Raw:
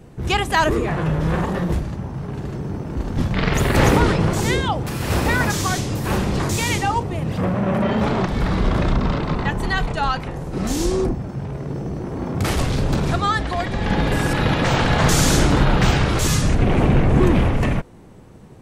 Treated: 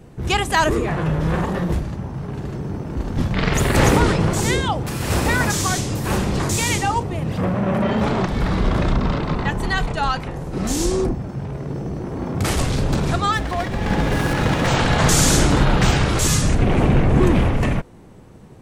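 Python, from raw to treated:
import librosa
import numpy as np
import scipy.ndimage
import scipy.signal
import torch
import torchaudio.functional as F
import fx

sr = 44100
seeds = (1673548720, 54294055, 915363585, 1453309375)

y = fx.dynamic_eq(x, sr, hz=8100.0, q=1.1, threshold_db=-41.0, ratio=4.0, max_db=5)
y = fx.running_max(y, sr, window=5, at=(13.31, 14.66), fade=0.02)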